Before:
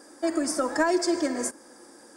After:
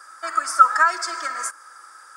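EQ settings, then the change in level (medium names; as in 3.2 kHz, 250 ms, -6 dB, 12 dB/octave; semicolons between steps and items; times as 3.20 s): resonant high-pass 1.3 kHz, resonance Q 11; +1.5 dB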